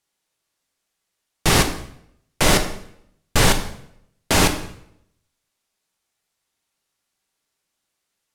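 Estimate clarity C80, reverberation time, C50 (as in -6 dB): 13.0 dB, 0.70 s, 10.0 dB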